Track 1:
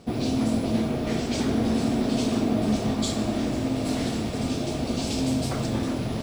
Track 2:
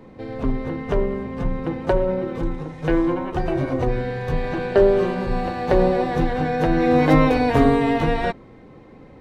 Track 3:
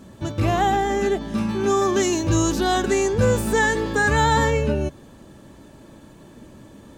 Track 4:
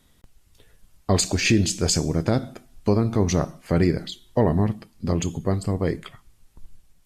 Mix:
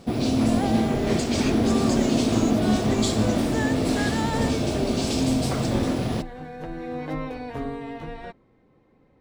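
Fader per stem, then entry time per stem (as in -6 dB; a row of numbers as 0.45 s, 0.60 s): +2.5 dB, -15.5 dB, -11.5 dB, -13.5 dB; 0.00 s, 0.00 s, 0.00 s, 0.00 s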